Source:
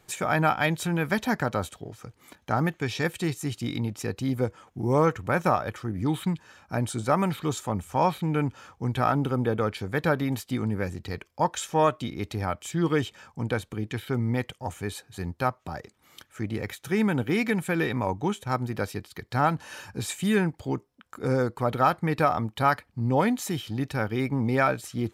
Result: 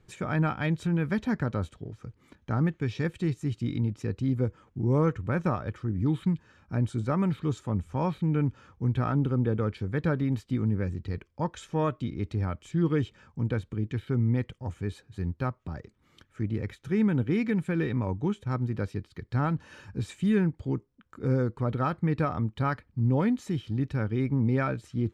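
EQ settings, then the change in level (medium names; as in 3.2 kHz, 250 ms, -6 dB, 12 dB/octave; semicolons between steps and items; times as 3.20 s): Bessel low-pass 7.8 kHz, order 2; tilt EQ -2.5 dB/octave; peaking EQ 740 Hz -8 dB 0.73 oct; -5.0 dB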